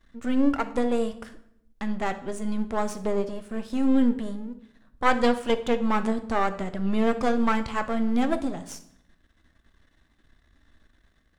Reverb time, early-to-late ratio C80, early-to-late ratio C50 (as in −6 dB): 0.70 s, 16.5 dB, 13.0 dB